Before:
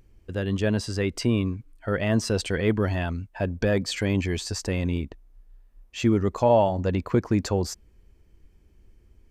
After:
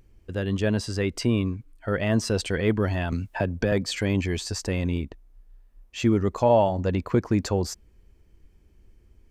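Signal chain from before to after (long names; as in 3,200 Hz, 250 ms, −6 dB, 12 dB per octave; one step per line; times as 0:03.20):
0:03.12–0:03.72: multiband upward and downward compressor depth 70%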